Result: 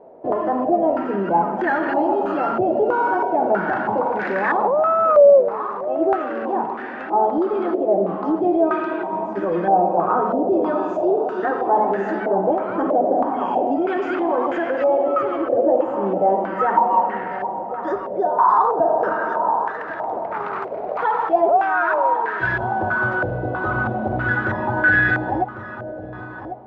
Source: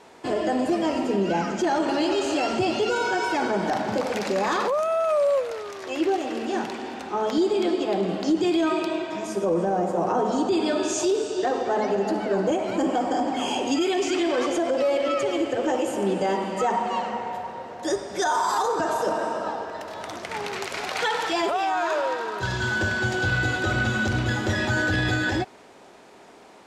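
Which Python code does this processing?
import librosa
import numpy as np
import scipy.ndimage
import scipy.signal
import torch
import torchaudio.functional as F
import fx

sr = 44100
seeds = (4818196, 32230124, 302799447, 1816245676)

p1 = fx.peak_eq(x, sr, hz=81.0, db=-12.0, octaves=0.28)
p2 = p1 + fx.echo_feedback(p1, sr, ms=1098, feedback_pct=33, wet_db=-11.0, dry=0)
y = fx.filter_held_lowpass(p2, sr, hz=3.1, low_hz=610.0, high_hz=1700.0)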